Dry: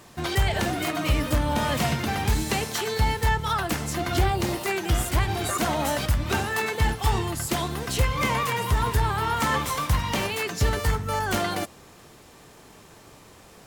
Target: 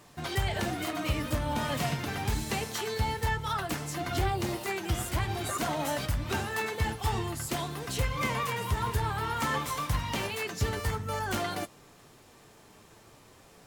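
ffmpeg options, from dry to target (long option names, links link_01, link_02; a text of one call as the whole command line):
ffmpeg -i in.wav -af "flanger=delay=6.8:depth=2.7:regen=-53:speed=0.51:shape=sinusoidal,volume=-2dB" out.wav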